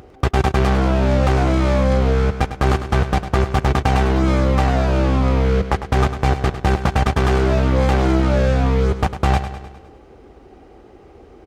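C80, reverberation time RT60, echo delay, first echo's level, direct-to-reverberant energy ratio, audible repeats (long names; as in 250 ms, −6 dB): no reverb audible, no reverb audible, 102 ms, −11.0 dB, no reverb audible, 5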